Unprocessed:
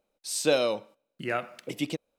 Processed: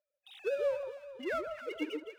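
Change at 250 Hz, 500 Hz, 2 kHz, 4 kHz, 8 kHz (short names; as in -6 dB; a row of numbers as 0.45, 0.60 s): -7.5 dB, -5.5 dB, -7.5 dB, -14.5 dB, under -25 dB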